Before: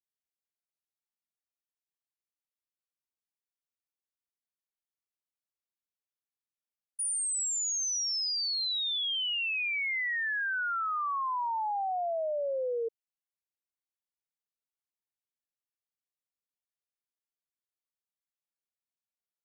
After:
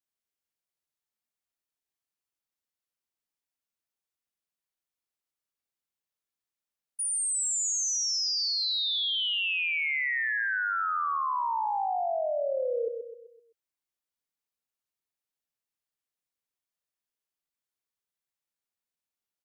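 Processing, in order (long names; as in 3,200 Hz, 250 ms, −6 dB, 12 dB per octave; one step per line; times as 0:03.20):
repeating echo 128 ms, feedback 45%, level −6.5 dB
level +1.5 dB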